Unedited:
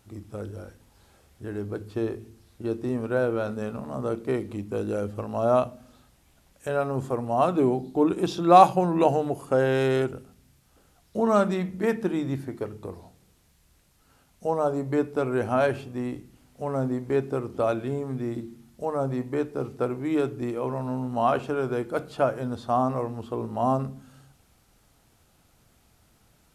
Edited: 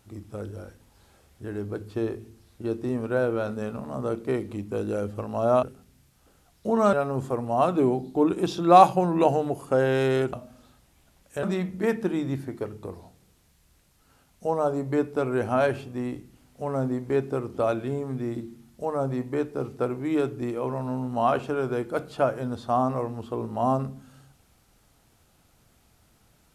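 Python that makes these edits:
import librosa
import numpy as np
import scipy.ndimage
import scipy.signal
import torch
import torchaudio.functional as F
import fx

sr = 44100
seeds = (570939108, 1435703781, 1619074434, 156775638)

y = fx.edit(x, sr, fx.swap(start_s=5.63, length_s=1.1, other_s=10.13, other_length_s=1.3), tone=tone)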